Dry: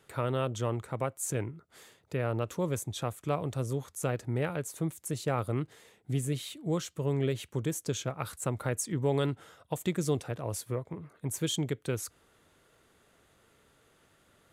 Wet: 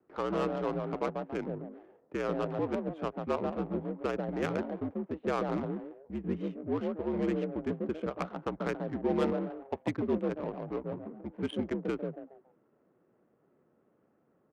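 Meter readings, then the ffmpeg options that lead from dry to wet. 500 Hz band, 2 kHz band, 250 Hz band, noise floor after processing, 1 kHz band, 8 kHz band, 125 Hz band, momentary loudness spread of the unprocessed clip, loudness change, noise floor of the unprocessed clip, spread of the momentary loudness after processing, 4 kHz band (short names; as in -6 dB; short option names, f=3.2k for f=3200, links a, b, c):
+1.0 dB, -1.0 dB, +2.0 dB, -71 dBFS, +1.0 dB, under -20 dB, -8.5 dB, 6 LU, -1.0 dB, -66 dBFS, 8 LU, -9.5 dB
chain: -filter_complex "[0:a]acrossover=split=1400[a][b];[a]asplit=5[c][d][e][f][g];[d]adelay=140,afreqshift=110,volume=-3.5dB[h];[e]adelay=280,afreqshift=220,volume=-12.9dB[i];[f]adelay=420,afreqshift=330,volume=-22.2dB[j];[g]adelay=560,afreqshift=440,volume=-31.6dB[k];[c][h][i][j][k]amix=inputs=5:normalize=0[l];[b]dynaudnorm=f=160:g=3:m=3dB[m];[l][m]amix=inputs=2:normalize=0,highpass=f=230:t=q:w=0.5412,highpass=f=230:t=q:w=1.307,lowpass=f=3.1k:t=q:w=0.5176,lowpass=f=3.1k:t=q:w=0.7071,lowpass=f=3.1k:t=q:w=1.932,afreqshift=-61,adynamicsmooth=sensitivity=4:basefreq=630"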